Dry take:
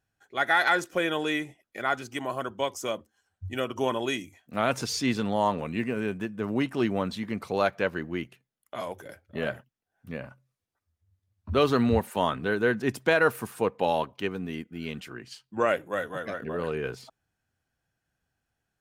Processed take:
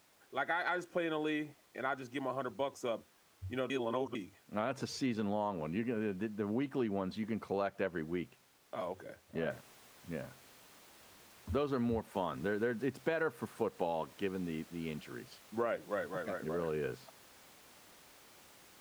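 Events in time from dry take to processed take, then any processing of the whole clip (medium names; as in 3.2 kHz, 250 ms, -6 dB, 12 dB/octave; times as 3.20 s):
3.70–4.15 s: reverse
9.50 s: noise floor step -55 dB -47 dB
whole clip: high-pass 350 Hz 6 dB/octave; tilt EQ -3 dB/octave; compression 6:1, threshold -25 dBFS; trim -5.5 dB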